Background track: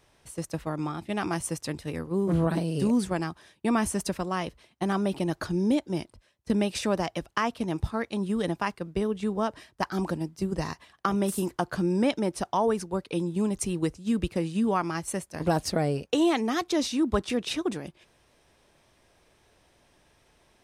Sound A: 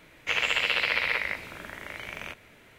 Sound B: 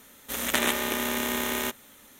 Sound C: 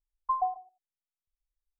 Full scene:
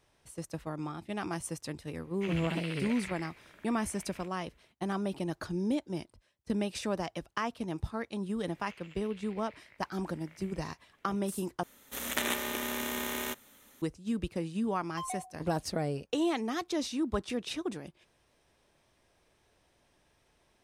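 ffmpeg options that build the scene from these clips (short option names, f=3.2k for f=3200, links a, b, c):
-filter_complex "[1:a]asplit=2[a][b];[0:a]volume=-6.5dB[c];[b]acompressor=threshold=-40dB:ratio=16:attack=12:release=840:knee=1:detection=rms[d];[3:a]asoftclip=type=hard:threshold=-30dB[e];[c]asplit=2[f][g];[f]atrim=end=11.634[h];[2:a]atrim=end=2.19,asetpts=PTS-STARTPTS,volume=-6.5dB[i];[g]atrim=start=13.816[j];[a]atrim=end=2.78,asetpts=PTS-STARTPTS,volume=-16.5dB,afade=t=in:d=0.004:c=hsin,afade=t=out:st=2.776:d=0.004:c=hsin,adelay=1940[k];[d]atrim=end=2.78,asetpts=PTS-STARTPTS,volume=-9dB,afade=t=in:d=0.004:c=hsin,afade=t=out:st=2.776:d=0.004:c=hsin,adelay=8410[l];[e]atrim=end=1.79,asetpts=PTS-STARTPTS,volume=-6.5dB,afade=t=in:d=0.004:c=hsin,afade=t=out:st=1.786:d=0.004:c=hsin,adelay=14680[m];[h][i]acrossfade=d=0.004:c1=hsin:c2=hsin[n];[n][j]acrossfade=d=0.004:c1=hsin:c2=hsin[o];[o][k][l][m]amix=inputs=4:normalize=0"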